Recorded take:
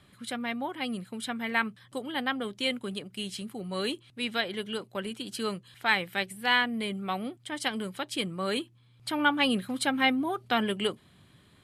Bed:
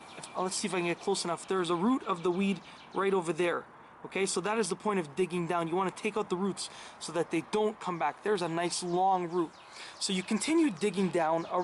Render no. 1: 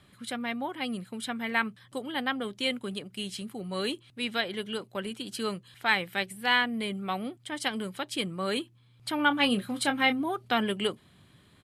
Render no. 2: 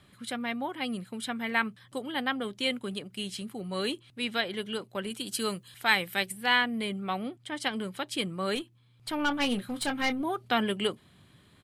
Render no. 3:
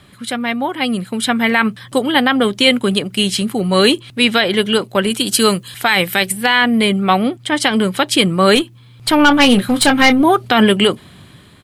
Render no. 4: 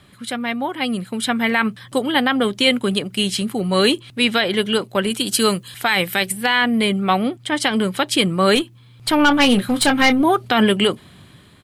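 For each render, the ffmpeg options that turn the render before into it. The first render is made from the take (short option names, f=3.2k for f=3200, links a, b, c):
-filter_complex "[0:a]asplit=3[a][b][c];[a]afade=t=out:st=9.3:d=0.02[d];[b]asplit=2[e][f];[f]adelay=25,volume=-9dB[g];[e][g]amix=inputs=2:normalize=0,afade=t=in:st=9.3:d=0.02,afade=t=out:st=10.19:d=0.02[h];[c]afade=t=in:st=10.19:d=0.02[i];[d][h][i]amix=inputs=3:normalize=0"
-filter_complex "[0:a]asettb=1/sr,asplit=3[a][b][c];[a]atrim=end=5.104[d];[b]atrim=start=5.1:end=6.32,asetpts=PTS-STARTPTS,afade=t=in:d=0.004:c=qsin,afade=t=out:st=1.216:d=0.004:c=qsin,highshelf=f=6.2k:g=11[e];[c]atrim=start=6.316[f];[d][e]acrossfade=d=0.004:c1=hsin:c2=qsin[g];[g][f]acrossfade=d=0.004:c1=qsin:c2=hsin,asettb=1/sr,asplit=3[h][i][j];[h]atrim=end=6.924[k];[i]atrim=start=6.92:end=7.94,asetpts=PTS-STARTPTS,afade=t=in:d=0.004:c=qsin,afade=t=out:st=1.016:d=0.004:c=qsin,highshelf=f=7.6k:g=-6[l];[j]atrim=start=7.936[m];[k][l]acrossfade=d=0.004:c1=hsin:c2=qsin[n];[n][m]acrossfade=d=0.004:c1=qsin:c2=hsin,asettb=1/sr,asplit=3[o][p][q];[o]atrim=end=8.554[r];[p]atrim=start=8.55:end=10.23,asetpts=PTS-STARTPTS,afade=t=in:d=0.004:c=qsin,afade=t=out:st=1.676:d=0.004:c=qsin,aeval=exprs='(tanh(11.2*val(0)+0.5)-tanh(0.5))/11.2':c=same[s];[q]atrim=start=10.226[t];[r][s]acrossfade=d=0.004:c1=hsin:c2=qsin[u];[u][t]acrossfade=d=0.004:c1=qsin:c2=hsin"
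-af "dynaudnorm=f=460:g=5:m=7dB,alimiter=level_in=13dB:limit=-1dB:release=50:level=0:latency=1"
-af "volume=-4dB"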